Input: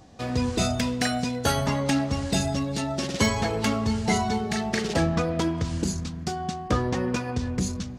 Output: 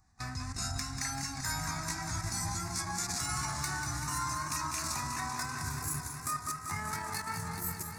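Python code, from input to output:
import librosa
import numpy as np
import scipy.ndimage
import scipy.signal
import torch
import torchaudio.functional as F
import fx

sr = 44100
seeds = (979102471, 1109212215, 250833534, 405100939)

y = fx.pitch_glide(x, sr, semitones=11.0, runs='starting unshifted')
y = fx.dynamic_eq(y, sr, hz=5300.0, q=1.1, threshold_db=-47.0, ratio=4.0, max_db=6)
y = fx.level_steps(y, sr, step_db=16)
y = fx.peak_eq(y, sr, hz=300.0, db=-15.0, octaves=2.2)
y = fx.fixed_phaser(y, sr, hz=1300.0, stages=4)
y = fx.echo_warbled(y, sr, ms=194, feedback_pct=79, rate_hz=2.8, cents=99, wet_db=-8.0)
y = y * librosa.db_to_amplitude(3.5)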